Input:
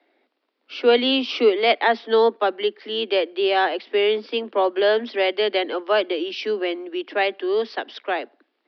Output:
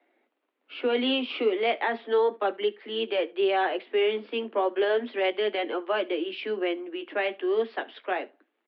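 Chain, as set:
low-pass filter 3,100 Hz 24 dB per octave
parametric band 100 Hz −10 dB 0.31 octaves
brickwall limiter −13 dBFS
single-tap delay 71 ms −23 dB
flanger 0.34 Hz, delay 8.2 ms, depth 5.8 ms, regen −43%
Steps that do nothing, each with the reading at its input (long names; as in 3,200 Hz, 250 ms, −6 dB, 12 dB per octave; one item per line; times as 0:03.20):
parametric band 100 Hz: nothing at its input below 190 Hz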